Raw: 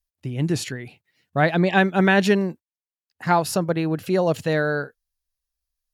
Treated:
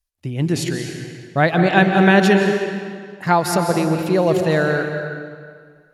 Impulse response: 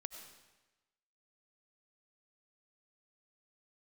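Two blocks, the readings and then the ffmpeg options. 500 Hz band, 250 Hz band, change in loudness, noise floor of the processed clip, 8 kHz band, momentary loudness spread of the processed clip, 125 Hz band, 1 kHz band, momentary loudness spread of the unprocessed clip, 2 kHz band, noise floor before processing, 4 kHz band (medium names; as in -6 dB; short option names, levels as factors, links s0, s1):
+4.5 dB, +4.5 dB, +4.0 dB, -54 dBFS, +4.0 dB, 16 LU, +4.5 dB, +4.5 dB, 14 LU, +4.0 dB, under -85 dBFS, +4.0 dB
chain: -filter_complex "[1:a]atrim=start_sample=2205,asetrate=25578,aresample=44100[s0];[0:a][s0]afir=irnorm=-1:irlink=0,volume=1.68"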